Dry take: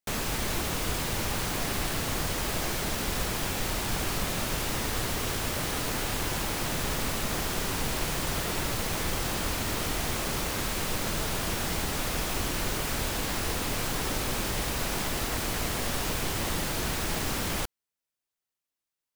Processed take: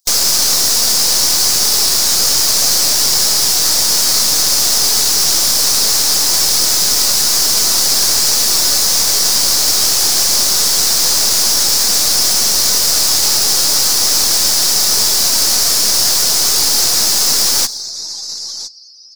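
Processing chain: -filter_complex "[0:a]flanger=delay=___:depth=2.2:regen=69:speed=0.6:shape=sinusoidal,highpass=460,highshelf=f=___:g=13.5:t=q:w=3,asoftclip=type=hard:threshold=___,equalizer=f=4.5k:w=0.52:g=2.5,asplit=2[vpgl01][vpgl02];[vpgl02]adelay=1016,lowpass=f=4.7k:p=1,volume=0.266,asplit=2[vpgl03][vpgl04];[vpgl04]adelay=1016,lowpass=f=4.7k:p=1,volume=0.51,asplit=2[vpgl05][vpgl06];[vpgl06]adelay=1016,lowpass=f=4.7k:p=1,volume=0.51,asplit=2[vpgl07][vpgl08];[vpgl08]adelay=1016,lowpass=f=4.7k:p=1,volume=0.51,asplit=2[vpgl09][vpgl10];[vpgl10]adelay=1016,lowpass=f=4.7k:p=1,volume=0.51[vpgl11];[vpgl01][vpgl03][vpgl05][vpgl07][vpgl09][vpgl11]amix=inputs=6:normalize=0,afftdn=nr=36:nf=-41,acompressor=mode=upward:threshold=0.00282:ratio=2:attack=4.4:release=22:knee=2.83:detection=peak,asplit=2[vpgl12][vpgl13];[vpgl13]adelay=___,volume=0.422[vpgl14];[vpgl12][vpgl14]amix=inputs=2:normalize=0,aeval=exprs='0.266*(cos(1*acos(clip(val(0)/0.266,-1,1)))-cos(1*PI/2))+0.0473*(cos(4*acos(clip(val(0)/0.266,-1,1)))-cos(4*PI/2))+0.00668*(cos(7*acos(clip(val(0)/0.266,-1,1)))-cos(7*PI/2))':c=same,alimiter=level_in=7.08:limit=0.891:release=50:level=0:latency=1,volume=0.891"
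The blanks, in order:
2.3, 3.5k, 0.112, 14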